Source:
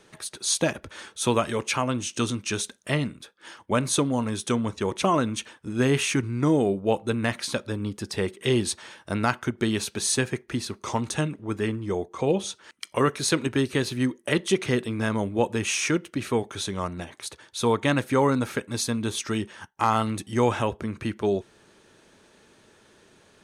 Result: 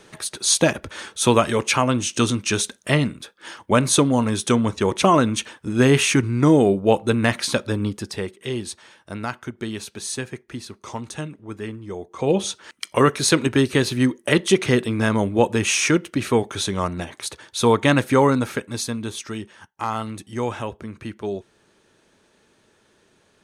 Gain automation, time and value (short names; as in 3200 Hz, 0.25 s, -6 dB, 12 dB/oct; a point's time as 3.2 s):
7.84 s +6.5 dB
8.39 s -4.5 dB
11.99 s -4.5 dB
12.39 s +6 dB
18.1 s +6 dB
19.36 s -3.5 dB